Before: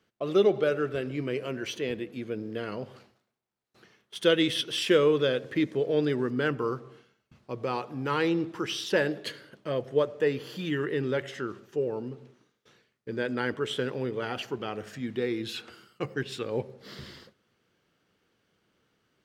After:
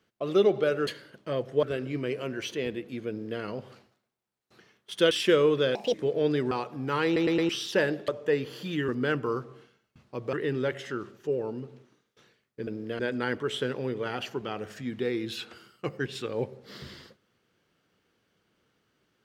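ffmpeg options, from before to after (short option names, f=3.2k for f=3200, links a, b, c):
-filter_complex "[0:a]asplit=16[a][b][c][d][e][f][g][h][i][j][k][l][m][n][o][p];[a]atrim=end=0.872[q];[b]atrim=start=9.258:end=10.022[r];[c]atrim=start=0.868:end=4.352[s];[d]atrim=start=4.728:end=5.374[t];[e]atrim=start=5.37:end=5.67,asetpts=PTS-STARTPTS,asetrate=68796,aresample=44100[u];[f]atrim=start=5.666:end=6.242[v];[g]atrim=start=7.688:end=8.342[w];[h]atrim=start=8.228:end=8.342[x];[i]atrim=start=8.228:end=8.342[y];[j]atrim=start=8.228:end=8.342[z];[k]atrim=start=8.668:end=9.262[aa];[l]atrim=start=10.018:end=10.822[ab];[m]atrim=start=6.238:end=7.692[ac];[n]atrim=start=10.818:end=13.162[ad];[o]atrim=start=2.328:end=2.652[ae];[p]atrim=start=13.158[af];[q][r]acrossfade=d=0.004:c1=hsin:c2=hsin[ag];[ag][s]acrossfade=d=0.004:c1=hsin:c2=hsin[ah];[ah][t]acrossfade=d=0.004:c1=hsin:c2=hsin[ai];[ai][u]acrossfade=d=0.004:c1=hsin:c2=hsin[aj];[aj][v]acrossfade=d=0.004:c1=hsin:c2=hsin[ak];[ak][w]acrossfade=d=0.004:c1=hsin:c2=hsin[al];[al][x]acrossfade=d=0.004:c1=hsin:c2=hsin[am];[am][y]acrossfade=d=0.004:c1=hsin:c2=hsin[an];[an][z]acrossfade=d=0.004:c1=hsin:c2=hsin[ao];[ao][aa]acrossfade=d=0.004:c1=hsin:c2=hsin[ap];[ap][ab]acrossfade=d=0.004:c1=hsin:c2=hsin[aq];[aq][ac]acrossfade=d=0.004:c1=hsin:c2=hsin[ar];[ar][ad]acrossfade=d=0.004:c1=hsin:c2=hsin[as];[as][ae]acrossfade=d=0.004:c1=hsin:c2=hsin[at];[at][af]acrossfade=d=0.004:c1=hsin:c2=hsin"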